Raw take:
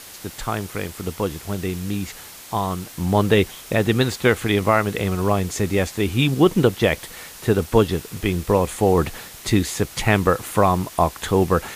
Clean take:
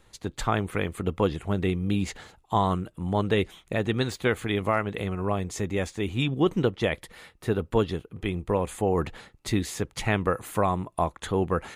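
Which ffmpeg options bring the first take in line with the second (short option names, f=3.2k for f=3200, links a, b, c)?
-af "afwtdn=0.011,asetnsamples=n=441:p=0,asendcmd='2.9 volume volume -7.5dB',volume=0dB"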